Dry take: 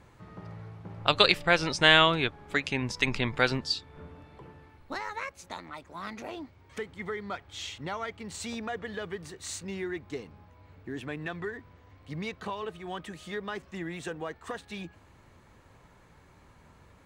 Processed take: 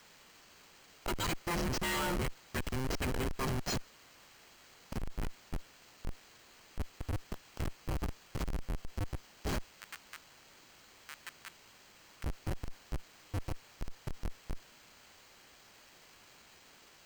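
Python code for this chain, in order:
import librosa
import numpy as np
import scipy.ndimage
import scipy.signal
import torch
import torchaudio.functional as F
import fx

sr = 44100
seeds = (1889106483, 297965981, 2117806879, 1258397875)

y = fx.band_invert(x, sr, width_hz=500)
y = fx.air_absorb(y, sr, metres=57.0)
y = fx.noise_reduce_blind(y, sr, reduce_db=23)
y = fx.peak_eq(y, sr, hz=6400.0, db=14.0, octaves=0.65)
y = fx.schmitt(y, sr, flips_db=-27.5)
y = fx.highpass(y, sr, hz=1400.0, slope=24, at=(9.64, 12.24))
y = fx.quant_dither(y, sr, seeds[0], bits=10, dither='triangular')
y = np.repeat(scipy.signal.resample_poly(y, 1, 4), 4)[:len(y)]
y = 10.0 ** (-39.5 / 20.0) * np.tanh(y / 10.0 ** (-39.5 / 20.0))
y = fx.notch(y, sr, hz=3600.0, q=13.0)
y = y * 10.0 ** (7.0 / 20.0)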